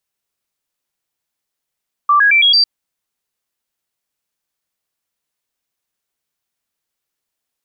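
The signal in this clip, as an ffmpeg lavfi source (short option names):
-f lavfi -i "aevalsrc='0.422*clip(min(mod(t,0.11),0.11-mod(t,0.11))/0.005,0,1)*sin(2*PI*1170*pow(2,floor(t/0.11)/2)*mod(t,0.11))':d=0.55:s=44100"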